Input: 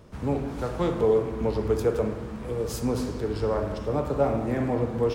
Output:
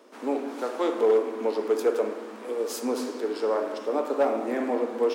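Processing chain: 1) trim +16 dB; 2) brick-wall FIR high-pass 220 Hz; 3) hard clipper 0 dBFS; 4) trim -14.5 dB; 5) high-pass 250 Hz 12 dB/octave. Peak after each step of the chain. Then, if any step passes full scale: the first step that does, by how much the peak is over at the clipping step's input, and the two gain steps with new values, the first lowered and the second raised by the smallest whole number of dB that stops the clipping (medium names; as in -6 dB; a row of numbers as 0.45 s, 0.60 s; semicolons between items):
+5.5 dBFS, +4.5 dBFS, 0.0 dBFS, -14.5 dBFS, -12.0 dBFS; step 1, 4.5 dB; step 1 +11 dB, step 4 -9.5 dB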